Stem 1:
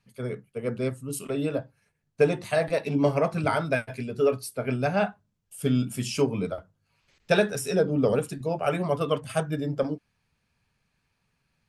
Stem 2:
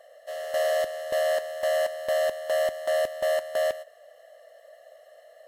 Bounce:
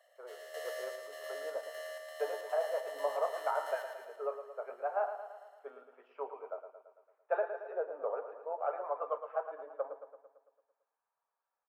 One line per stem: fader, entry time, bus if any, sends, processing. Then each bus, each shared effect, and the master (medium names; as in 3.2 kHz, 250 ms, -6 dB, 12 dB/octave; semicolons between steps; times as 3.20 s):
-1.0 dB, 0.00 s, no send, echo send -9.5 dB, low-pass 1.1 kHz 24 dB/octave
-9.5 dB, 0.00 s, no send, echo send -6.5 dB, auto duck -9 dB, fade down 1.35 s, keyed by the first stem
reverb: none
echo: feedback delay 112 ms, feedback 58%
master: Bessel high-pass 920 Hz, order 8